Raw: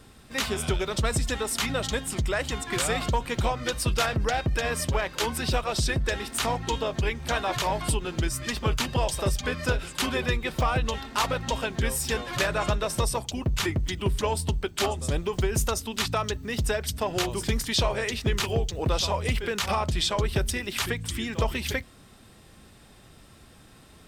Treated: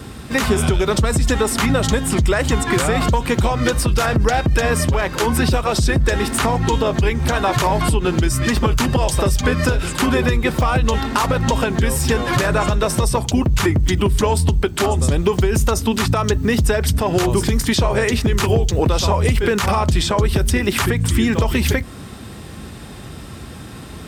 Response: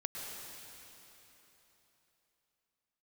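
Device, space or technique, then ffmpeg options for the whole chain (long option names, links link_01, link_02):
mastering chain: -filter_complex "[0:a]highpass=frequency=46:width=0.5412,highpass=frequency=46:width=1.3066,equalizer=frequency=610:width_type=o:width=0.82:gain=-3.5,acrossover=split=2300|5100[link_01][link_02][link_03];[link_01]acompressor=threshold=-28dB:ratio=4[link_04];[link_02]acompressor=threshold=-46dB:ratio=4[link_05];[link_03]acompressor=threshold=-36dB:ratio=4[link_06];[link_04][link_05][link_06]amix=inputs=3:normalize=0,acompressor=threshold=-33dB:ratio=2,tiltshelf=frequency=1200:gain=3,alimiter=level_in=22.5dB:limit=-1dB:release=50:level=0:latency=1,volume=-5.5dB"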